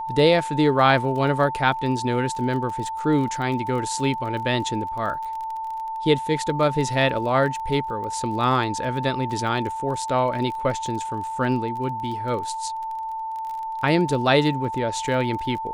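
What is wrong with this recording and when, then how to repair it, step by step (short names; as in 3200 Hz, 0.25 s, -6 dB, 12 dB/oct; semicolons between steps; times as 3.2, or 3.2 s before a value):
crackle 25/s -31 dBFS
tone 890 Hz -27 dBFS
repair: de-click; notch 890 Hz, Q 30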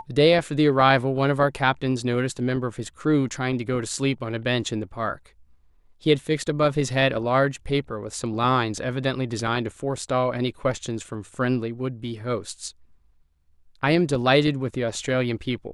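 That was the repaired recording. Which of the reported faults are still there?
none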